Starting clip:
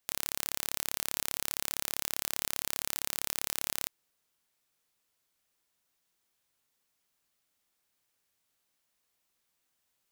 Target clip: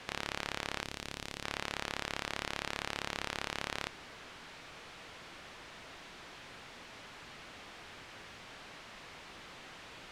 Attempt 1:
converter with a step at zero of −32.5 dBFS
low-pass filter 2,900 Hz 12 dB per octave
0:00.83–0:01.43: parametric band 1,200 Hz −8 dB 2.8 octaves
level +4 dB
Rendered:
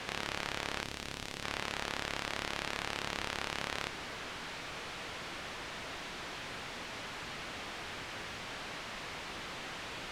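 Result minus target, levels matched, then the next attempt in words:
converter with a step at zero: distortion +8 dB
converter with a step at zero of −40.5 dBFS
low-pass filter 2,900 Hz 12 dB per octave
0:00.83–0:01.43: parametric band 1,200 Hz −8 dB 2.8 octaves
level +4 dB

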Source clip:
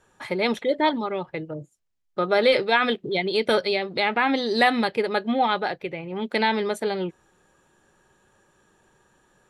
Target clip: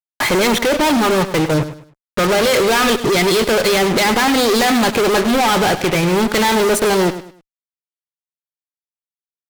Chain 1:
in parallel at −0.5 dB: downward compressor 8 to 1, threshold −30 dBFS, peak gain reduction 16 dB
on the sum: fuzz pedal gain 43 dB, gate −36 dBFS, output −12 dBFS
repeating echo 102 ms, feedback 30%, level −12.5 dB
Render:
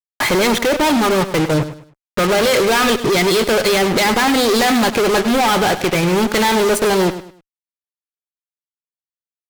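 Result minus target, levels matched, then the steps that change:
downward compressor: peak gain reduction +8.5 dB
change: downward compressor 8 to 1, threshold −20.5 dBFS, peak gain reduction 7.5 dB

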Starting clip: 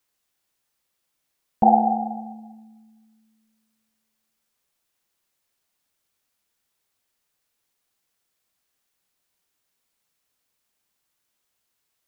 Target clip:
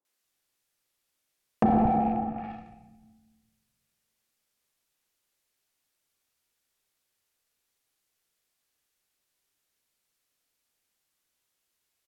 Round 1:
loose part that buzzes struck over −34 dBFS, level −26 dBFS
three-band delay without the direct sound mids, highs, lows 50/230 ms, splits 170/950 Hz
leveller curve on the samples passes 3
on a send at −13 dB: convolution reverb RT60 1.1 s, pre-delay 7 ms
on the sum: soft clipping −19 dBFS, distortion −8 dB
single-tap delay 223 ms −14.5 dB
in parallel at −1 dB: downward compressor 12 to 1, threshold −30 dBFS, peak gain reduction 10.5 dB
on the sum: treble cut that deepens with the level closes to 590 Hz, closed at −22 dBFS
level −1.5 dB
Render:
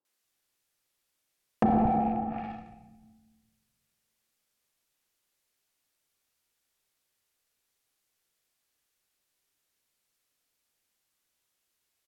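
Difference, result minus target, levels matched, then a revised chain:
downward compressor: peak gain reduction +6 dB
loose part that buzzes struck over −34 dBFS, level −26 dBFS
three-band delay without the direct sound mids, highs, lows 50/230 ms, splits 170/950 Hz
leveller curve on the samples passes 3
on a send at −13 dB: convolution reverb RT60 1.1 s, pre-delay 7 ms
on the sum: soft clipping −19 dBFS, distortion −8 dB
single-tap delay 223 ms −14.5 dB
in parallel at −1 dB: downward compressor 12 to 1, threshold −23.5 dBFS, peak gain reduction 4.5 dB
on the sum: treble cut that deepens with the level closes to 590 Hz, closed at −22 dBFS
level −1.5 dB

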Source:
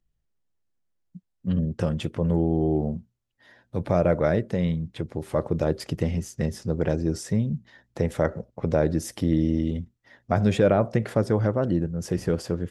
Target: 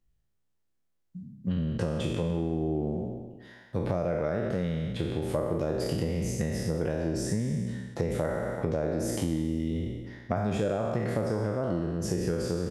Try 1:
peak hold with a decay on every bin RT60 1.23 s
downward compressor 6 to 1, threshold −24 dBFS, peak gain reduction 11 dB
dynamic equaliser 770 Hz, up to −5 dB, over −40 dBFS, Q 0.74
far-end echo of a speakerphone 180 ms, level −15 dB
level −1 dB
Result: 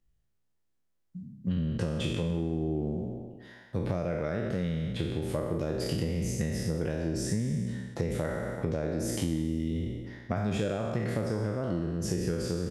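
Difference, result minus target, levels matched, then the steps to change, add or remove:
4,000 Hz band +3.0 dB
change: dynamic equaliser 3,000 Hz, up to −5 dB, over −40 dBFS, Q 0.74

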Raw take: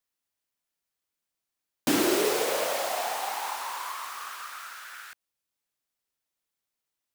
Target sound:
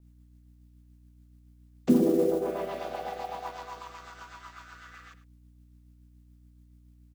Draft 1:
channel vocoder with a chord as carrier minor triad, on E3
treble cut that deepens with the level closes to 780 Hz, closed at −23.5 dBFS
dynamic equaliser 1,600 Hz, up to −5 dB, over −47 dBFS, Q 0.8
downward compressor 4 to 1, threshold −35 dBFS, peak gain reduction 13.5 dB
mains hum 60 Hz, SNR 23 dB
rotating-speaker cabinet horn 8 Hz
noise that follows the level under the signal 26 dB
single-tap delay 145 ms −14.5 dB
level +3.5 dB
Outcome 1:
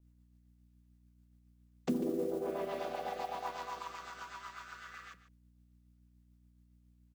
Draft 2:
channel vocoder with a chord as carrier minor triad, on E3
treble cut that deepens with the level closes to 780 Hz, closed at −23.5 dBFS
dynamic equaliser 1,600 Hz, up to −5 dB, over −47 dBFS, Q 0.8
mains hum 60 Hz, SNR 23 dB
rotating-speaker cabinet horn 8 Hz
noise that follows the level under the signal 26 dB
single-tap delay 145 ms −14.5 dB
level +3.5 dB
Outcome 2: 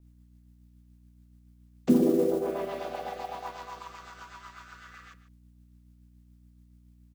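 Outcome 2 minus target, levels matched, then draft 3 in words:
echo 42 ms late
channel vocoder with a chord as carrier minor triad, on E3
treble cut that deepens with the level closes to 780 Hz, closed at −23.5 dBFS
dynamic equaliser 1,600 Hz, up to −5 dB, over −47 dBFS, Q 0.8
mains hum 60 Hz, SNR 23 dB
rotating-speaker cabinet horn 8 Hz
noise that follows the level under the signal 26 dB
single-tap delay 103 ms −14.5 dB
level +3.5 dB

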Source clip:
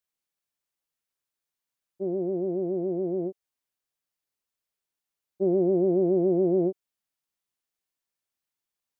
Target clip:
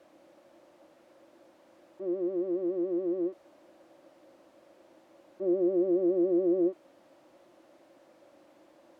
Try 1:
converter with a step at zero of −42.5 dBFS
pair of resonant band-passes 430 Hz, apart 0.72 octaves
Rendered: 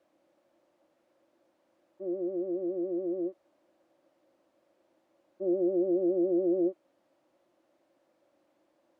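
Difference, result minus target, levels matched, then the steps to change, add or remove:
converter with a step at zero: distortion −11 dB
change: converter with a step at zero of −30.5 dBFS

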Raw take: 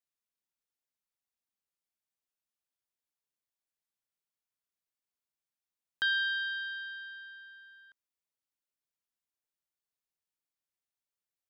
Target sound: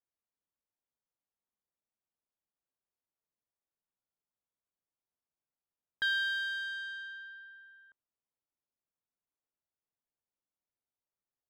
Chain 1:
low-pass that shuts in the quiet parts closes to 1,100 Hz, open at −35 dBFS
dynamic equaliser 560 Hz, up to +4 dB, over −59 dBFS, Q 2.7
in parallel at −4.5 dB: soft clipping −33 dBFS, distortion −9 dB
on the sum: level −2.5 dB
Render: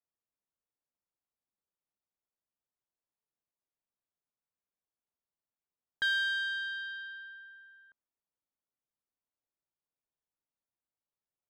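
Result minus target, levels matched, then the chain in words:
soft clipping: distortion −5 dB
low-pass that shuts in the quiet parts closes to 1,100 Hz, open at −35 dBFS
dynamic equaliser 560 Hz, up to +4 dB, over −59 dBFS, Q 2.7
in parallel at −4.5 dB: soft clipping −41 dBFS, distortion −4 dB
on the sum: level −2.5 dB

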